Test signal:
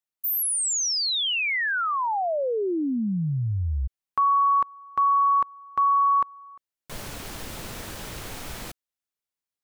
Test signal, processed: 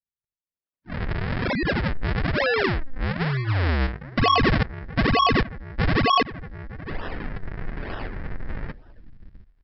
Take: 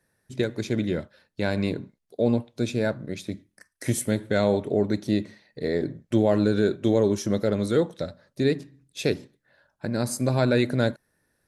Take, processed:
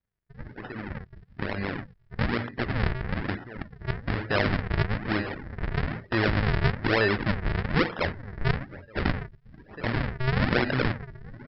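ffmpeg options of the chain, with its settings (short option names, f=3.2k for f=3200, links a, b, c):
-filter_complex "[0:a]asubboost=boost=6.5:cutoff=66,crystalizer=i=7.5:c=0,acompressor=threshold=-30dB:ratio=2.5:attack=0.27:release=28:knee=1:detection=rms,bandreject=f=60:t=h:w=6,bandreject=f=120:t=h:w=6,bandreject=f=180:t=h:w=6,bandreject=f=240:t=h:w=6,asplit=2[a][b];[b]adelay=722,lowpass=f=3.2k:p=1,volume=-14dB,asplit=2[c][d];[d]adelay=722,lowpass=f=3.2k:p=1,volume=0.31,asplit=2[e][f];[f]adelay=722,lowpass=f=3.2k:p=1,volume=0.31[g];[a][c][e][g]amix=inputs=4:normalize=0,dynaudnorm=f=310:g=11:m=11dB,aresample=11025,acrusher=samples=24:mix=1:aa=0.000001:lfo=1:lforange=38.4:lforate=1.1,aresample=44100,equalizer=f=1.8k:w=1.8:g=9.5,afftdn=nr=15:nf=-39,volume=-4.5dB"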